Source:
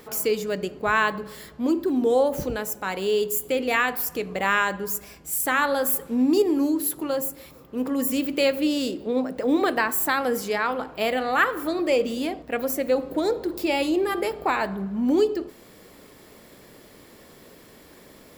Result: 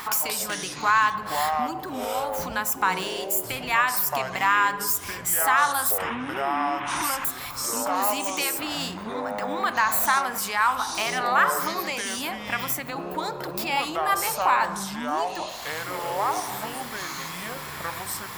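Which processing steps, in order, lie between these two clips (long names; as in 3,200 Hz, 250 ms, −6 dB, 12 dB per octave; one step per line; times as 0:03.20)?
0:05.98–0:07.25: linear delta modulator 16 kbit/s, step −27.5 dBFS
in parallel at −2 dB: brickwall limiter −18 dBFS, peak gain reduction 9.5 dB
on the sum: downward compressor 3 to 1, threshold −34 dBFS, peak gain reduction 15.5 dB
low shelf with overshoot 710 Hz −11 dB, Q 3
delay with pitch and tempo change per echo 132 ms, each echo −6 semitones, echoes 3, each echo −6 dB
level +9 dB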